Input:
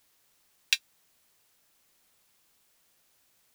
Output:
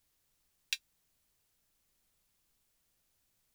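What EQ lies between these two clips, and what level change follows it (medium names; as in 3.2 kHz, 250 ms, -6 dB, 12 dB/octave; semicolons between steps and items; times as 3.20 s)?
pre-emphasis filter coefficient 0.9; tilt EQ -4.5 dB/octave; +4.5 dB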